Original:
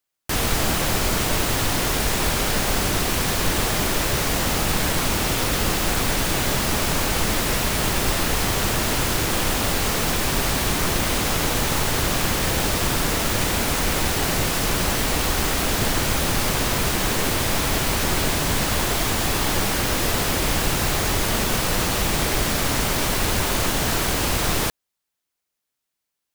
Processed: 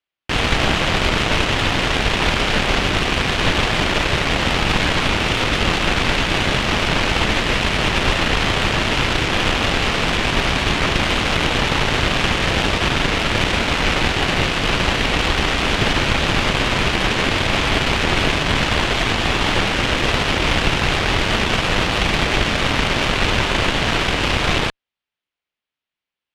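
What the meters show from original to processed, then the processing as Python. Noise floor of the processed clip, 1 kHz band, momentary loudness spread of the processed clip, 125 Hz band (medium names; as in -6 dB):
under -85 dBFS, +4.5 dB, 1 LU, +3.5 dB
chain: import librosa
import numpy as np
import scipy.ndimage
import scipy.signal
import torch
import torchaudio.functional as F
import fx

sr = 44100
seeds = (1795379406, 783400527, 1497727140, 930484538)

y = fx.lowpass_res(x, sr, hz=3000.0, q=1.8)
y = fx.cheby_harmonics(y, sr, harmonics=(7,), levels_db=(-21,), full_scale_db=-7.5)
y = y * librosa.db_to_amplitude(5.5)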